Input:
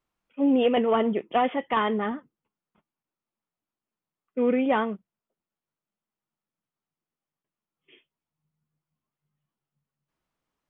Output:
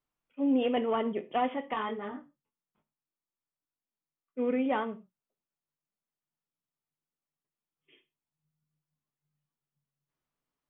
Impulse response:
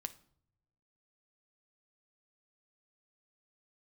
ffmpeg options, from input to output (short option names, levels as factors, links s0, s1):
-filter_complex "[1:a]atrim=start_sample=2205,atrim=end_sample=6174[s0];[0:a][s0]afir=irnorm=-1:irlink=0,asplit=3[s1][s2][s3];[s1]afade=t=out:st=1.73:d=0.02[s4];[s2]flanger=delay=19.5:depth=3.8:speed=1.4,afade=t=in:st=1.73:d=0.02,afade=t=out:st=4.38:d=0.02[s5];[s3]afade=t=in:st=4.38:d=0.02[s6];[s4][s5][s6]amix=inputs=3:normalize=0,volume=0.631"